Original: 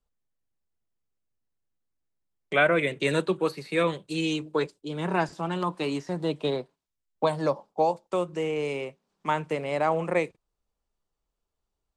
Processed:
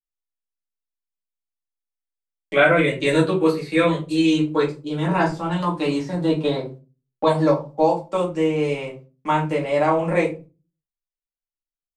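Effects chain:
noise gate −52 dBFS, range −32 dB
rectangular room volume 120 cubic metres, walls furnished, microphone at 2.3 metres

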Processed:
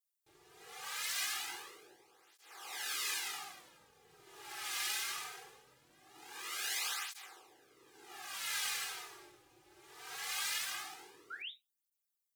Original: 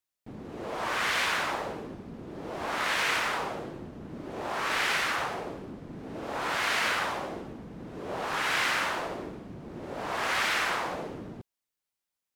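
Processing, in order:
lower of the sound and its delayed copy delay 2.4 ms
first-order pre-emphasis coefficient 0.97
sound drawn into the spectrogram rise, 0:11.30–0:11.52, 1,300–4,000 Hz −45 dBFS
convolution reverb RT60 0.25 s, pre-delay 3 ms, DRR 4.5 dB
through-zero flanger with one copy inverted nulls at 0.21 Hz, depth 4.6 ms
level +2 dB

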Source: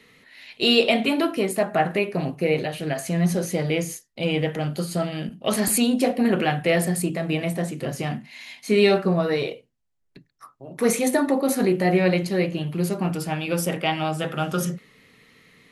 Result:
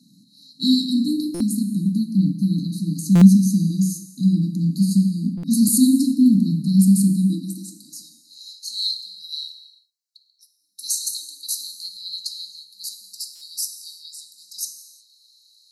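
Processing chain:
high-pass filter sweep 150 Hz → 4,000 Hz, 0:07.17–0:08.59
frequency shifter +18 Hz
linear-phase brick-wall band-stop 310–3,800 Hz
reverb whose tail is shaped and stops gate 390 ms falling, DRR 7.5 dB
buffer that repeats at 0:01.34/0:03.15/0:05.37/0:13.35, samples 256, times 10
level +2.5 dB

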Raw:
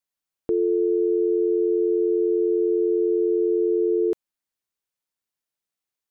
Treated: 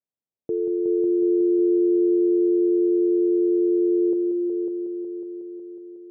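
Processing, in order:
Chebyshev band-pass filter 110–560 Hz, order 2
brickwall limiter −18 dBFS, peak gain reduction 3 dB
on a send: echo machine with several playback heads 183 ms, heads all three, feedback 62%, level −9 dB

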